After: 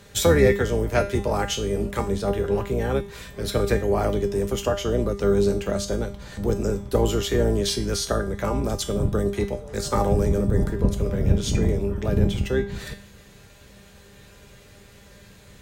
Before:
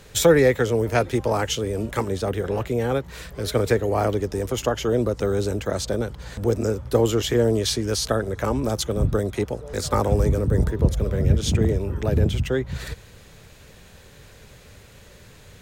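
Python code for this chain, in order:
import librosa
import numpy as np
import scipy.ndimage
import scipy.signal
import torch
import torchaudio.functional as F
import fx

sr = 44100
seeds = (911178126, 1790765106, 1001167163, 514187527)

y = fx.octave_divider(x, sr, octaves=2, level_db=2.0)
y = scipy.signal.sosfilt(scipy.signal.butter(2, 41.0, 'highpass', fs=sr, output='sos'), y)
y = fx.comb_fb(y, sr, f0_hz=200.0, decay_s=0.41, harmonics='all', damping=0.0, mix_pct=80)
y = y * librosa.db_to_amplitude(9.0)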